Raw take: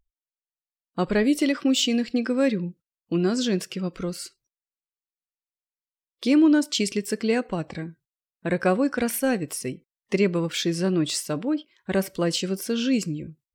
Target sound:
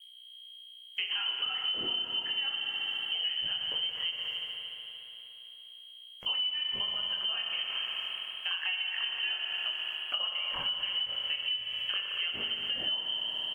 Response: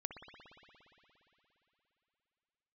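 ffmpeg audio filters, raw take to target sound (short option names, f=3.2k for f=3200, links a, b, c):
-filter_complex "[0:a]asettb=1/sr,asplit=3[a][b][c];[a]atrim=end=9.344[d];[b]atrim=start=9.34:end=11.53,asetpts=PTS-STARTPTS,afade=t=in:d=0.004:c=qsin,afade=t=out:st=2.186:d=0.004:c=qsin,lowshelf=f=200:t=q:w=1.5:g=-11[e];[c]atrim=start=11.526[f];[d][e]acrossfade=d=0.004:c1=hsin:c2=qsin[g];[g][f]acrossfade=d=0.004:c1=qsin:c2=hsin,aecho=1:1:233|466:0.126|0.0227,flanger=delay=19:depth=7.4:speed=0.31,acontrast=56,aeval=exprs='val(0)+0.00501*(sin(2*PI*60*n/s)+sin(2*PI*2*60*n/s)/2+sin(2*PI*3*60*n/s)/3+sin(2*PI*4*60*n/s)/4+sin(2*PI*5*60*n/s)/5)':c=same,lowpass=f=2.8k:t=q:w=0.5098,lowpass=f=2.8k:t=q:w=0.6013,lowpass=f=2.8k:t=q:w=0.9,lowpass=f=2.8k:t=q:w=2.563,afreqshift=-3300,acrusher=bits=8:mix=0:aa=0.5[h];[1:a]atrim=start_sample=2205[i];[h][i]afir=irnorm=-1:irlink=0,acompressor=threshold=-28dB:ratio=12,volume=-1.5dB" -ar 48000 -c:a libvorbis -b:a 96k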